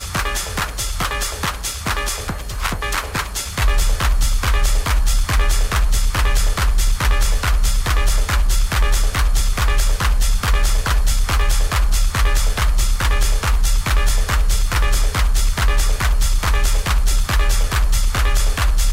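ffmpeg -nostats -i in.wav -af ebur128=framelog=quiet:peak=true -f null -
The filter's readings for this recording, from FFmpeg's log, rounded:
Integrated loudness:
  I:         -19.6 LUFS
  Threshold: -29.5 LUFS
Loudness range:
  LRA:         2.2 LU
  Threshold: -39.4 LUFS
  LRA low:   -21.3 LUFS
  LRA high:  -19.1 LUFS
True peak:
  Peak:       -8.7 dBFS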